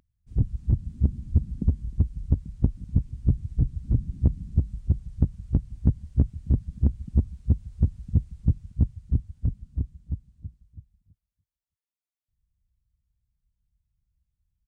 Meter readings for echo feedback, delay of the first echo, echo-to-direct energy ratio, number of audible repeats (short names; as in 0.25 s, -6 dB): 37%, 0.308 s, -23.5 dB, 2